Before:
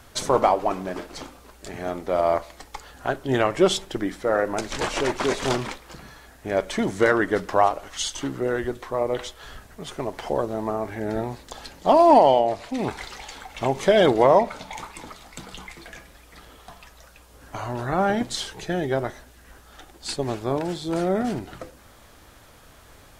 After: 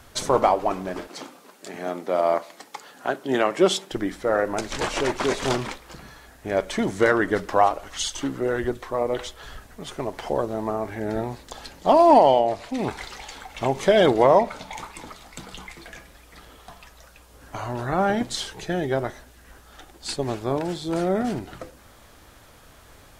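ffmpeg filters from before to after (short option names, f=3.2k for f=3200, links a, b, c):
-filter_complex "[0:a]asettb=1/sr,asplit=3[a][b][c];[a]atrim=end=1.074[d];[b]atrim=start=1.07:end=3.91,asetpts=PTS-STARTPTS,afade=t=in:d=0.004:c=qsin,afade=t=out:st=2.836:d=0.004:c=qsin,highpass=f=170:w=0.5412,highpass=f=170:w=1.3066[e];[c]atrim=start=3.906[f];[d][e]acrossfade=d=0.004:c1=hsin:c2=qsin[g];[g][f]acrossfade=d=0.004:c1=qsin:c2=hsin,asettb=1/sr,asplit=3[h][i][j];[h]atrim=end=7.254[k];[i]atrim=start=7.25:end=9.86,asetpts=PTS-STARTPTS,afade=t=in:d=0.004:c=qsin,afade=t=out:st=2.606:d=0.004:c=qsin,aphaser=in_gain=1:out_gain=1:delay=4.1:decay=0.24:speed=1.4:type=sinusoidal[l];[j]atrim=start=9.856[m];[k][l]acrossfade=d=0.004:c1=hsin:c2=qsin[n];[n][m]acrossfade=d=0.004:c1=qsin:c2=hsin"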